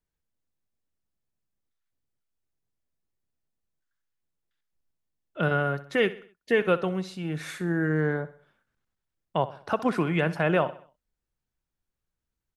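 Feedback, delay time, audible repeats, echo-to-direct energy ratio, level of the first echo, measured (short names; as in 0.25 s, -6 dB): 45%, 64 ms, 3, -15.5 dB, -16.5 dB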